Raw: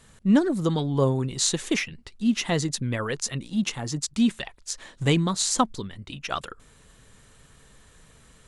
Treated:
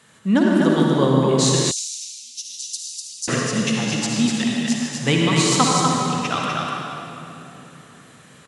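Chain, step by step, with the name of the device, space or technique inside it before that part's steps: stadium PA (high-pass 120 Hz 24 dB/octave; peaking EQ 1.8 kHz +5 dB 2.7 oct; loudspeakers at several distances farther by 52 m -10 dB, 85 m -4 dB; reverberation RT60 3.2 s, pre-delay 48 ms, DRR -1.5 dB); 1.71–3.28 s: inverse Chebyshev high-pass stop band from 1.9 kHz, stop band 50 dB

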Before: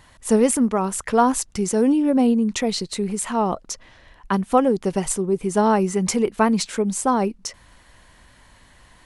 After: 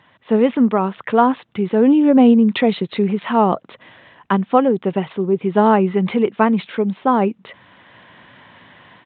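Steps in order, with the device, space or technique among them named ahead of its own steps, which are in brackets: Bluetooth headset (high-pass 120 Hz 24 dB/octave; level rider gain up to 9 dB; resampled via 8 kHz; SBC 64 kbps 16 kHz)

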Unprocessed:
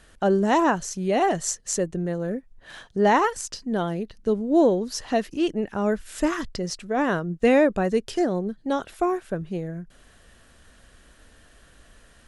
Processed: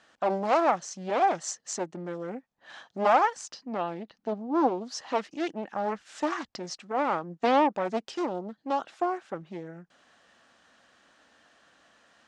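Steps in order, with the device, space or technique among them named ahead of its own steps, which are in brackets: full-range speaker at full volume (loudspeaker Doppler distortion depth 0.56 ms; cabinet simulation 260–7000 Hz, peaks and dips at 410 Hz -7 dB, 810 Hz +6 dB, 1.2 kHz +3 dB); 3.52–4.75 s: peaking EQ 8.4 kHz -8 dB 1.1 oct; trim -4.5 dB

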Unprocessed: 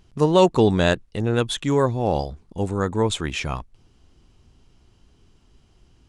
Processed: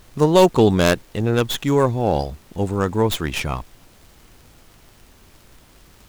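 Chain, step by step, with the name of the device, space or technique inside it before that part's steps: record under a worn stylus (tracing distortion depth 0.14 ms; crackle; pink noise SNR 31 dB); trim +2.5 dB

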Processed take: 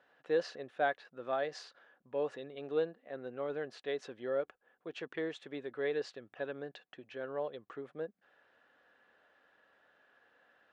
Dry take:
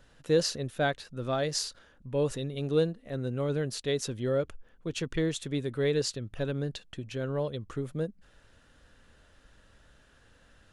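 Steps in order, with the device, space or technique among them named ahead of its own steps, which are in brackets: tin-can telephone (band-pass 440–2300 Hz; small resonant body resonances 750/1700 Hz, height 7 dB); trim -3.5 dB

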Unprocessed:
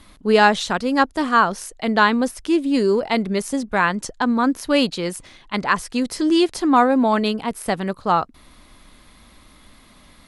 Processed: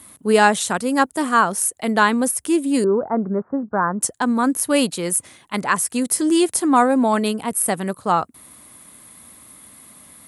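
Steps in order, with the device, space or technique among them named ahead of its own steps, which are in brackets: budget condenser microphone (high-pass 83 Hz 24 dB/octave; resonant high shelf 6.7 kHz +13 dB, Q 1.5); 2.84–4.01 s: steep low-pass 1.5 kHz 48 dB/octave

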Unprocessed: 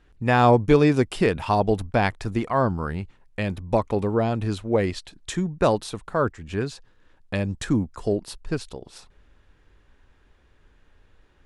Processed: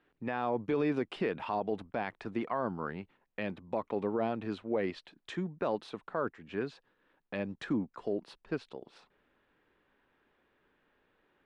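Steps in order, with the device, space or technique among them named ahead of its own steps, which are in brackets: DJ mixer with the lows and highs turned down (three-band isolator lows -23 dB, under 170 Hz, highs -23 dB, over 3.8 kHz; peak limiter -15.5 dBFS, peak gain reduction 10 dB); trim -6.5 dB

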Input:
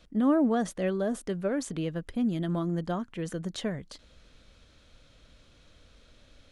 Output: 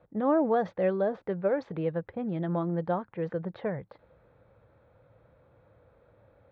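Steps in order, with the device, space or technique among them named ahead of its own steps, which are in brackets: guitar cabinet (cabinet simulation 100–3700 Hz, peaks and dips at 110 Hz +9 dB, 240 Hz -8 dB, 510 Hz +7 dB, 850 Hz +8 dB, 3 kHz -10 dB); level-controlled noise filter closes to 1.3 kHz, open at -18.5 dBFS; peaking EQ 280 Hz -3 dB 0.23 oct

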